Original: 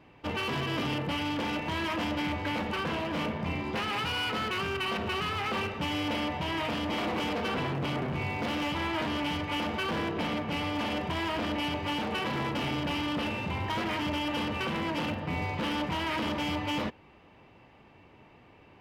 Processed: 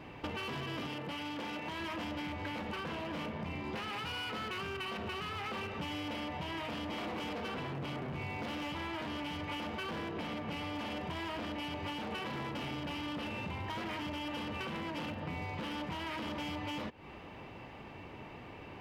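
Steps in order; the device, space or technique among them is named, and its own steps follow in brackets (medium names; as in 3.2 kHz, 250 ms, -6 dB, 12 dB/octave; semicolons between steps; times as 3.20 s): serial compression, peaks first (compression, threshold -40 dBFS, peak gain reduction 11.5 dB; compression 2:1, threshold -48 dBFS, peak gain reduction 6 dB); 0.87–1.80 s: high-pass 180 Hz 6 dB/octave; trim +7.5 dB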